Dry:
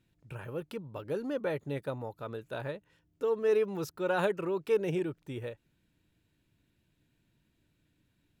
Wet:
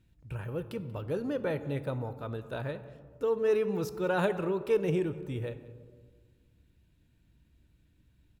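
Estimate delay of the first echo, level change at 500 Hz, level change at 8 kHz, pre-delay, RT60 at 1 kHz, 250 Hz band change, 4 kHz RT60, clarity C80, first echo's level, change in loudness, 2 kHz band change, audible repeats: 186 ms, +1.0 dB, no reading, 3 ms, 1.5 s, +3.0 dB, 0.65 s, 14.0 dB, -20.0 dB, +1.0 dB, +0.5 dB, 1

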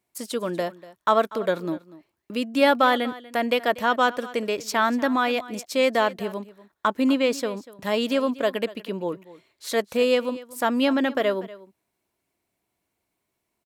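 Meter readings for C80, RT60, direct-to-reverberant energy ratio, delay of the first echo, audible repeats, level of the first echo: no reverb, no reverb, no reverb, 241 ms, 1, -18.5 dB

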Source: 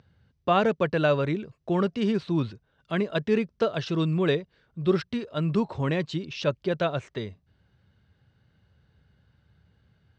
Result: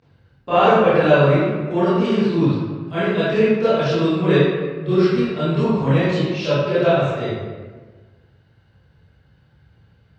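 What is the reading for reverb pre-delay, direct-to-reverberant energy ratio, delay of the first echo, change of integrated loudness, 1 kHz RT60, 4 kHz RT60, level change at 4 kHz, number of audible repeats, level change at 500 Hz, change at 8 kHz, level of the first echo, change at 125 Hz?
22 ms, -16.0 dB, no echo, +9.0 dB, 1.3 s, 0.85 s, +7.0 dB, no echo, +10.0 dB, no reading, no echo, +9.0 dB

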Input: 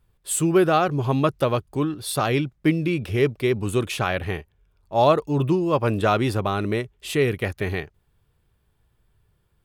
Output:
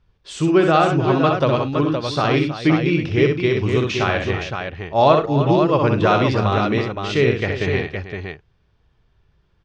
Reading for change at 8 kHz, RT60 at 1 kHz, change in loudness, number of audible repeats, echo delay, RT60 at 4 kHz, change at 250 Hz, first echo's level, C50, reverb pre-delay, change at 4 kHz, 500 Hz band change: no reading, no reverb, +4.5 dB, 4, 63 ms, no reverb, +4.5 dB, -5.0 dB, no reverb, no reverb, +5.0 dB, +4.5 dB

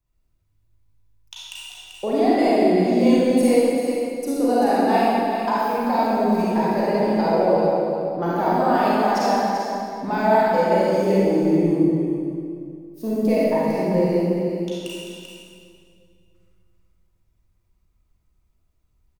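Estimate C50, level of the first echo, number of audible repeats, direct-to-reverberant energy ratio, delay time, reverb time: -6.0 dB, -7.5 dB, 1, -9.0 dB, 389 ms, 2.3 s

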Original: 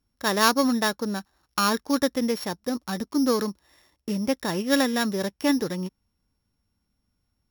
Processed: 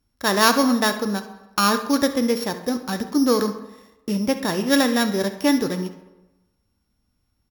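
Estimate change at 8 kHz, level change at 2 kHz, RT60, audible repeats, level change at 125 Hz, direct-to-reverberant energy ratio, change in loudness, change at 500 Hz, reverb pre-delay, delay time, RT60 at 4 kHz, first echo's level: +4.0 dB, +4.0 dB, 1.1 s, 1, +3.5 dB, 8.0 dB, +4.0 dB, +4.0 dB, 3 ms, 68 ms, 0.70 s, -15.5 dB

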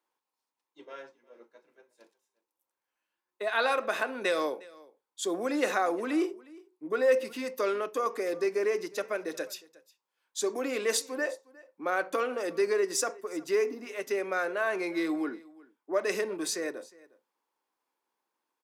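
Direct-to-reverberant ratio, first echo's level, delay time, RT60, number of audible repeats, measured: no reverb, -22.5 dB, 359 ms, no reverb, 1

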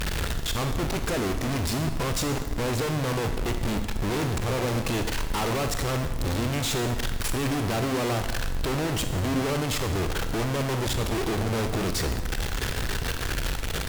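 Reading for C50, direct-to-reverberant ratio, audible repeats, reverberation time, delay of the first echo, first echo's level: 8.5 dB, 7.0 dB, no echo, 1.1 s, no echo, no echo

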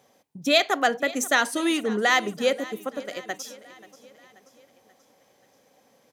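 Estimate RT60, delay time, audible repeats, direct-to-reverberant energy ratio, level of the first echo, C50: no reverb, 533 ms, 3, no reverb, -19.0 dB, no reverb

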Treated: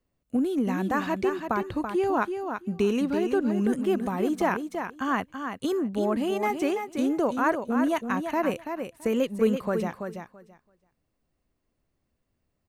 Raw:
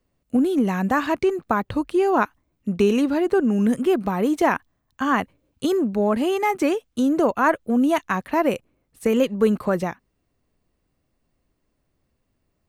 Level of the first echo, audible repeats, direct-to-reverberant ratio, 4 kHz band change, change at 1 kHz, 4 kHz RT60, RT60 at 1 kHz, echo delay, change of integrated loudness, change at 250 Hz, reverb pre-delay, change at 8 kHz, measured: -7.0 dB, 2, no reverb, -5.0 dB, -5.0 dB, no reverb, no reverb, 333 ms, -5.5 dB, -5.0 dB, no reverb, -5.0 dB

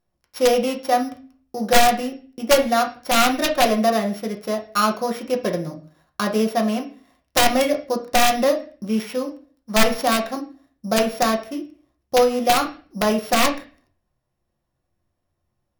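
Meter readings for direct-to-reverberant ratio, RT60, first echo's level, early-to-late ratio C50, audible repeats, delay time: 2.0 dB, 0.40 s, no echo, 12.0 dB, no echo, no echo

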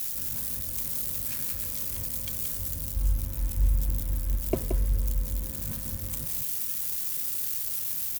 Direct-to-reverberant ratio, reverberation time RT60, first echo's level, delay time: no reverb, no reverb, -6.5 dB, 175 ms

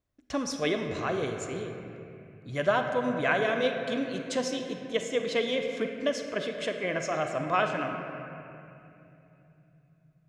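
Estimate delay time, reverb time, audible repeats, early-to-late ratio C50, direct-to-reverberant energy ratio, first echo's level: no echo, 2.8 s, no echo, 4.5 dB, 4.0 dB, no echo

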